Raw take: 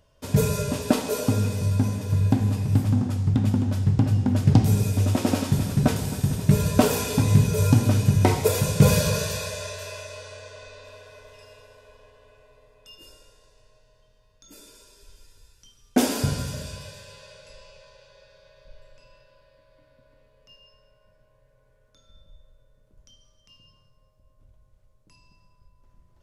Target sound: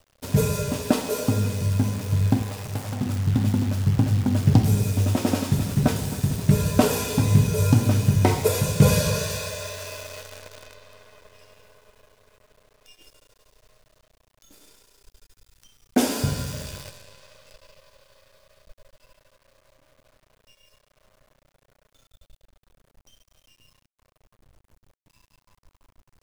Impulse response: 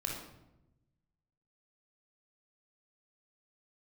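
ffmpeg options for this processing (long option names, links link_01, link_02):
-filter_complex "[0:a]asettb=1/sr,asplit=3[link_01][link_02][link_03];[link_01]atrim=end=2.424[link_04];[link_02]atrim=start=2.42:end=3.01,asetpts=PTS-STARTPTS,afade=type=in:duration=0.004:curve=qsin,afade=type=out:start_time=0.586:duration=0.004:curve=qsin,lowshelf=frequency=380:width_type=q:width=1.5:gain=-9.5[link_05];[link_03]atrim=start=3.006[link_06];[link_04][link_05]acrossfade=duration=0.004:curve1=hsin:curve2=qsin[link_07];[link_07][link_06]acrossfade=duration=0.004:curve1=qsin:curve2=hsin,acrusher=bits=7:dc=4:mix=0:aa=0.000001"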